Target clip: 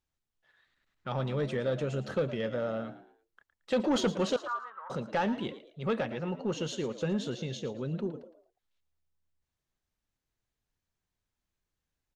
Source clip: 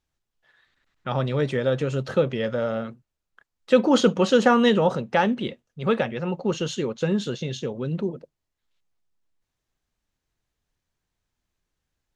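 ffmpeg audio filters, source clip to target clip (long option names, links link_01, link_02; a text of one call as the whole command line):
ffmpeg -i in.wav -filter_complex "[0:a]asoftclip=type=tanh:threshold=-15dB,asettb=1/sr,asplit=3[link_01][link_02][link_03];[link_01]atrim=end=4.364[link_04];[link_02]atrim=start=4.36:end=4.9,asetpts=PTS-STARTPTS,afade=type=in:duration=0.004:curve=qsin,afade=type=out:start_time=0.536:duration=0.004:curve=qsin,asuperpass=centerf=1200:order=4:qfactor=3[link_05];[link_03]atrim=start=4.896[link_06];[link_04][link_05]acrossfade=duration=0.004:curve1=hsin:curve2=qsin[link_07];[link_07][link_06]acrossfade=duration=0.004:curve1=qsin:curve2=hsin,asplit=2[link_08][link_09];[link_09]asplit=3[link_10][link_11][link_12];[link_10]adelay=112,afreqshift=74,volume=-14dB[link_13];[link_11]adelay=224,afreqshift=148,volume=-23.4dB[link_14];[link_12]adelay=336,afreqshift=222,volume=-32.7dB[link_15];[link_13][link_14][link_15]amix=inputs=3:normalize=0[link_16];[link_08][link_16]amix=inputs=2:normalize=0,volume=-6.5dB" out.wav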